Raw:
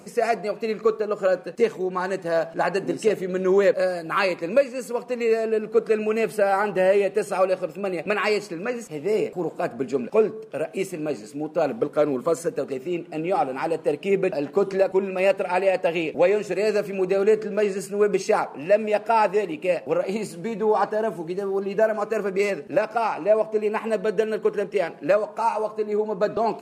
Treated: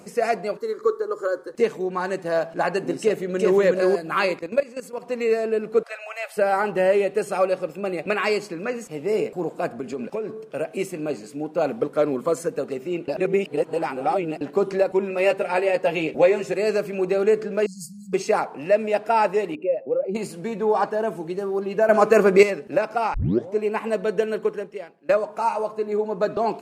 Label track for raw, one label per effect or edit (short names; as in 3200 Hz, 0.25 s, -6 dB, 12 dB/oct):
0.570000	1.550000	fixed phaser centre 690 Hz, stages 6
3.020000	3.580000	echo throw 0.37 s, feedback 15%, level -2 dB
4.390000	5.030000	level quantiser steps of 14 dB
5.830000	6.370000	rippled Chebyshev high-pass 540 Hz, ripple 3 dB
9.790000	10.420000	compressor 10:1, threshold -24 dBFS
13.080000	14.410000	reverse
15.090000	16.540000	doubler 13 ms -5.5 dB
17.660000	18.130000	brick-wall FIR band-stop 200–4100 Hz
19.550000	20.150000	spectral contrast raised exponent 1.8
21.890000	22.430000	gain +9.5 dB
23.140000	23.140000	tape start 0.41 s
24.410000	25.090000	fade out quadratic, to -20.5 dB